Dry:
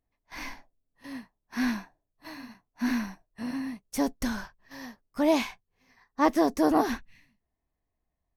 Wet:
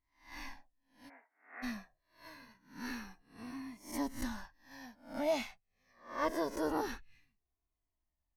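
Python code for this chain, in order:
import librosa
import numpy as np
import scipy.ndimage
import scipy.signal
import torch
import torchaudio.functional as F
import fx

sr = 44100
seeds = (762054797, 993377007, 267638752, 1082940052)

y = fx.spec_swells(x, sr, rise_s=0.41)
y = fx.cheby1_bandpass(y, sr, low_hz=320.0, high_hz=2300.0, order=5, at=(1.08, 1.62), fade=0.02)
y = fx.comb_cascade(y, sr, direction='falling', hz=0.25)
y = F.gain(torch.from_numpy(y), -6.0).numpy()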